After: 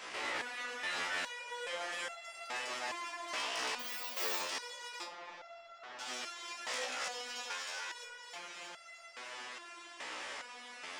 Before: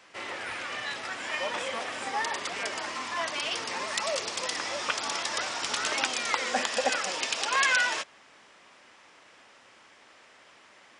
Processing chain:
parametric band 130 Hz −11.5 dB 1.3 octaves
hum removal 76.14 Hz, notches 32
compressor whose output falls as the input rises −41 dBFS, ratio −1
brickwall limiter −29.5 dBFS, peak gain reduction 5.5 dB
soft clipping −33 dBFS, distortion −19 dB
feedback echo with a high-pass in the loop 315 ms, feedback 64%, high-pass 420 Hz, level −3.5 dB
0:03.79–0:04.38: bad sample-rate conversion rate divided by 2×, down filtered, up zero stuff
0:05.03–0:05.99: head-to-tape spacing loss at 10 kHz 34 dB
step-sequenced resonator 2.4 Hz 63–680 Hz
level +10 dB

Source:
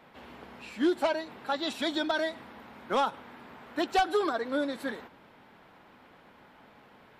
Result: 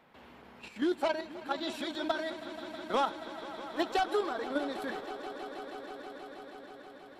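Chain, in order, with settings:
output level in coarse steps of 9 dB
echo that builds up and dies away 160 ms, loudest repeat 5, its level −16.5 dB

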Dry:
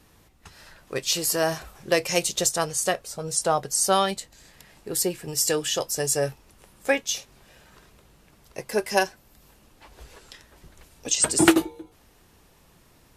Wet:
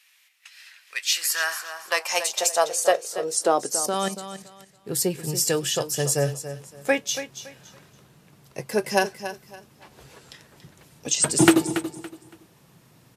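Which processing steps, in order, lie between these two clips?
0:03.77–0:04.89: output level in coarse steps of 13 dB
repeating echo 282 ms, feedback 26%, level −11.5 dB
high-pass filter sweep 2,300 Hz → 130 Hz, 0:00.86–0:04.72

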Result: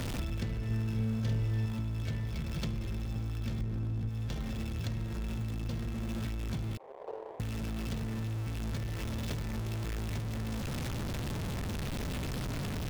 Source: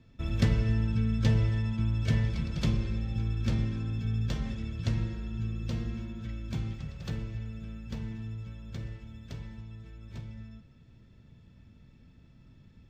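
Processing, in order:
converter with a step at zero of −34 dBFS
0:03.61–0:04.09: spectral tilt −2 dB per octave
0:06.77–0:07.40: elliptic band-pass filter 400–1,000 Hz, stop band 40 dB
leveller curve on the samples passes 1
downward compressor 6 to 1, threshold −35 dBFS, peak gain reduction 17 dB
0:00.66–0:01.66: double-tracking delay 45 ms −3.5 dB
level +1.5 dB

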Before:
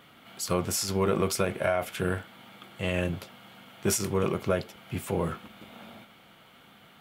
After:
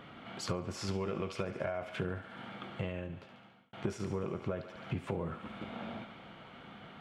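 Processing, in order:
head-to-tape spacing loss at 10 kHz 25 dB
feedback echo with a high-pass in the loop 71 ms, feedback 71%, high-pass 820 Hz, level −11.5 dB
downward compressor 12 to 1, threshold −39 dBFS, peak gain reduction 17.5 dB
0:00.91–0:01.42: parametric band 2,800 Hz +9 dB 0.74 octaves
0:02.70–0:03.73: fade out
level +6.5 dB

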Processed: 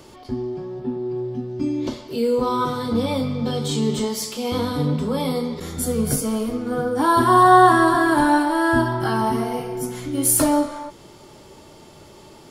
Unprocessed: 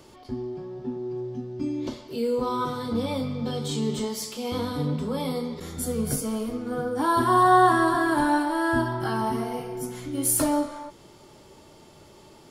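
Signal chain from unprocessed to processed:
0:00.79–0:01.48: parametric band 6,400 Hz −13.5 dB → −7 dB 0.38 octaves
level +5.5 dB

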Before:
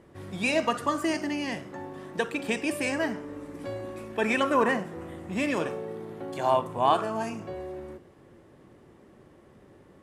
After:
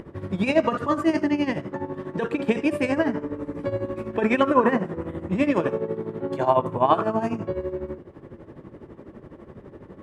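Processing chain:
low-pass filter 1,100 Hz 6 dB per octave
notch filter 740 Hz, Q 12
in parallel at −3 dB: brickwall limiter −26 dBFS, peak gain reduction 13 dB
on the sum: upward compression, threshold −41 dBFS
amplitude tremolo 12 Hz, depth 75%
level +7.5 dB

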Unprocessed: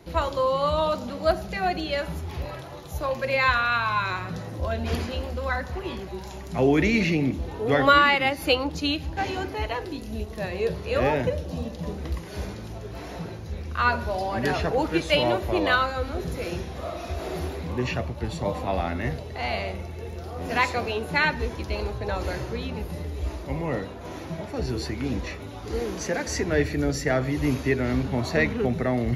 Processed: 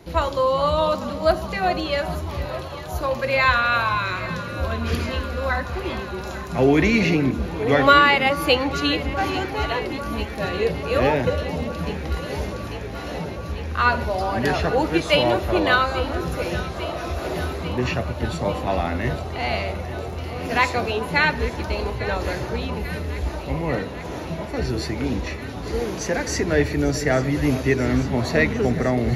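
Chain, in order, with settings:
0:03.95–0:05.30: parametric band 780 Hz −12.5 dB 0.49 octaves
delay that swaps between a low-pass and a high-pass 422 ms, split 1,200 Hz, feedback 88%, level −13 dB
level +3.5 dB

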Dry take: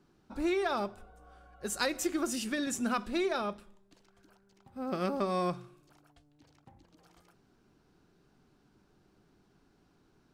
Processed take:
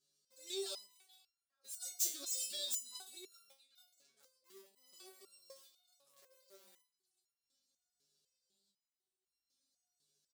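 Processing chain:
stylus tracing distortion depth 0.11 ms
octave-band graphic EQ 125/250/500/1,000/2,000/4,000/8,000 Hz −6/+8/+9/−9/−7/+10/+9 dB
mains hum 50 Hz, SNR 22 dB
comb filter 5.4 ms, depth 49%
echo through a band-pass that steps 430 ms, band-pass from 3,200 Hz, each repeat −1.4 octaves, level −11 dB
square-wave tremolo 0.54 Hz, depth 65%, duty 70%
in parallel at −4 dB: centre clipping without the shift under −38 dBFS
on the sum: first difference
step-sequenced resonator 4 Hz 140–1,400 Hz
level +4.5 dB

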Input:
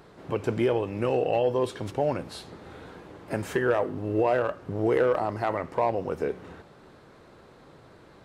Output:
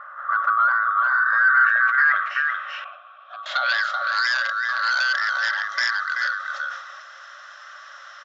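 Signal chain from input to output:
neighbouring bands swapped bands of 1,000 Hz
parametric band 800 Hz −2.5 dB 0.77 octaves
on a send: single-tap delay 382 ms −6 dB
on the sum: sine wavefolder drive 7 dB, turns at −11.5 dBFS
in parallel at +2 dB: downward compressor, threshold −29 dBFS, peak gain reduction 14 dB
on the sum: brick-wall band-pass 530–7,600 Hz
0:02.84–0:03.46: formant filter a
low-pass filter sweep 1,200 Hz → 5,600 Hz, 0:01.10–0:04.29
level that may fall only so fast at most 71 dB per second
level −9 dB

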